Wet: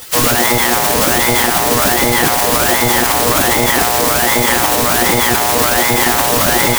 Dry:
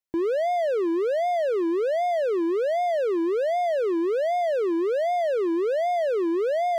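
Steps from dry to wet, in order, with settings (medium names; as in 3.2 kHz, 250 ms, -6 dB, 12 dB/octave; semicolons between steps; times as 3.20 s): spring tank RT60 1.3 s, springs 39 ms, chirp 40 ms, DRR 2 dB; monotone LPC vocoder at 8 kHz 120 Hz; word length cut 6-bit, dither triangular; spectral gate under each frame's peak -15 dB weak; loudness maximiser +25.5 dB; trim -1 dB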